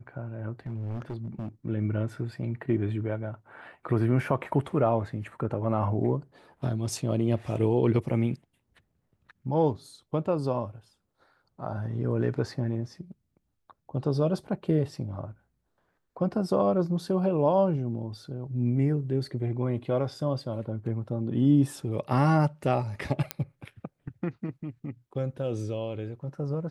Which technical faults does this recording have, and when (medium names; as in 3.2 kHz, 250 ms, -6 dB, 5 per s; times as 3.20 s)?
0.66–1.49 s: clipped -30.5 dBFS
23.31 s: pop -11 dBFS